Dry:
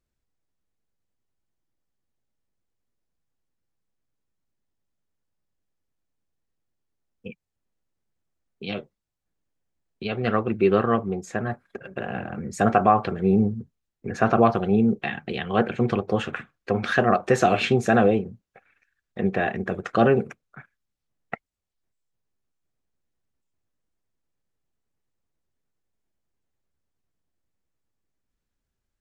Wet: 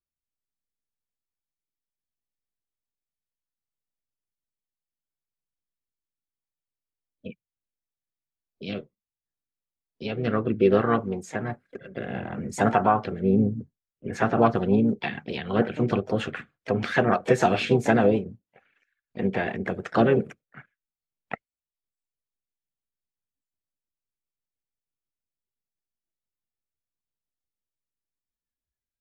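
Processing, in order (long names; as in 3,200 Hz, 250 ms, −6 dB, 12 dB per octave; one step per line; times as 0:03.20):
pitch-shifted copies added +4 semitones −10 dB
noise reduction from a noise print of the clip's start 15 dB
rotating-speaker cabinet horn 0.7 Hz, later 6.7 Hz, at 0:13.68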